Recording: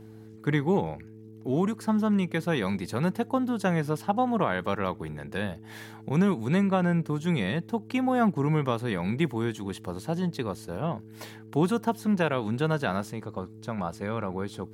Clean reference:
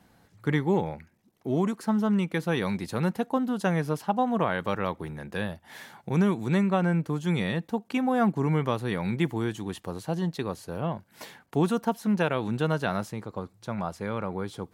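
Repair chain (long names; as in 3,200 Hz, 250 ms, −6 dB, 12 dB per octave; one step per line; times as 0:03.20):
hum removal 109.5 Hz, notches 4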